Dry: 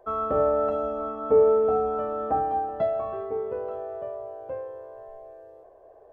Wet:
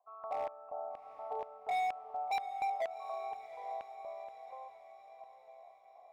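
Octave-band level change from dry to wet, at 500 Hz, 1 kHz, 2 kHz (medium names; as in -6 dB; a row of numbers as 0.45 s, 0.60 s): -20.0 dB, -7.5 dB, no reading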